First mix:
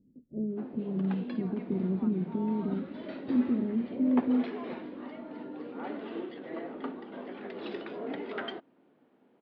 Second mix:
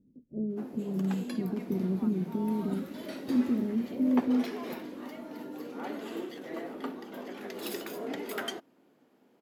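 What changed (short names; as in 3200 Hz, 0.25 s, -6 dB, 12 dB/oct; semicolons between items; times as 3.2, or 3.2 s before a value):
background: add bell 9600 Hz +10.5 dB 2.1 oct; master: remove steep low-pass 4100 Hz 36 dB/oct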